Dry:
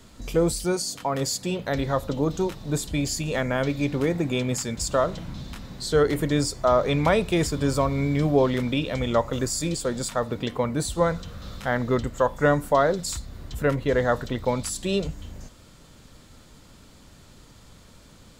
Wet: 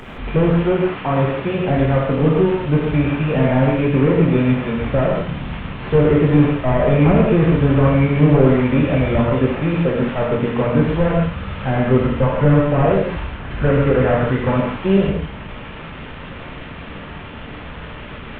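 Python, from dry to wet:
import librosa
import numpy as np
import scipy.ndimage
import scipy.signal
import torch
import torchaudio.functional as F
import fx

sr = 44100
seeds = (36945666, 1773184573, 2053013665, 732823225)

y = fx.delta_mod(x, sr, bps=16000, step_db=-36.0)
y = fx.peak_eq(y, sr, hz=1500.0, db=4.5, octaves=0.77, at=(13.21, 14.61))
y = fx.rev_gated(y, sr, seeds[0], gate_ms=190, shape='flat', drr_db=-2.5)
y = F.gain(torch.from_numpy(y), 6.0).numpy()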